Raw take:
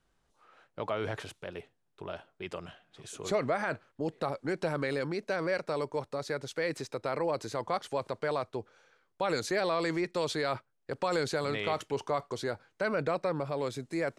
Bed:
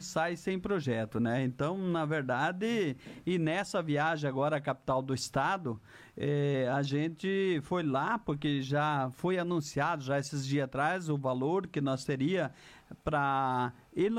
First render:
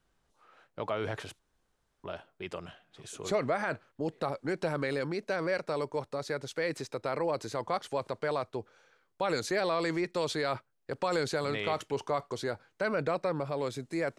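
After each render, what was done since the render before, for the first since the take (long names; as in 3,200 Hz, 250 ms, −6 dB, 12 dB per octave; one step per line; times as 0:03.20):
0:01.39–0:02.04: fill with room tone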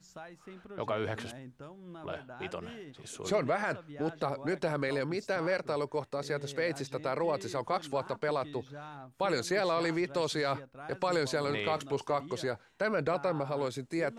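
mix in bed −16 dB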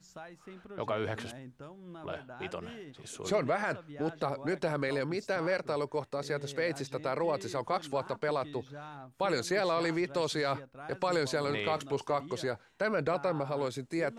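no processing that can be heard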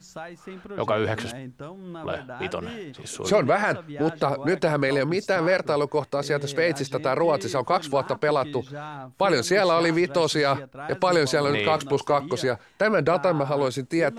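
level +9.5 dB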